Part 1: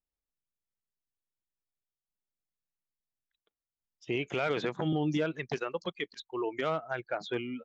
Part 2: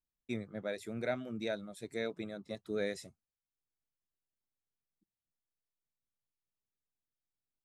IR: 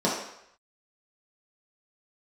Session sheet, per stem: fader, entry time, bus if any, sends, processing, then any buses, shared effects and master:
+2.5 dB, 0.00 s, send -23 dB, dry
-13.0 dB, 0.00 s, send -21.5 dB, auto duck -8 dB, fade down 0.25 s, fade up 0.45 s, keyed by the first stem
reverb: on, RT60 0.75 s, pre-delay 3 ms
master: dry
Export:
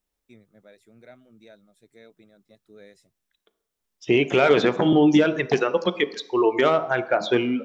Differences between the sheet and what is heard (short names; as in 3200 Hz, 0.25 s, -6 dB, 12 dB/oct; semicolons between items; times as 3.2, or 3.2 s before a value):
stem 1 +2.5 dB -> +11.0 dB; stem 2: send off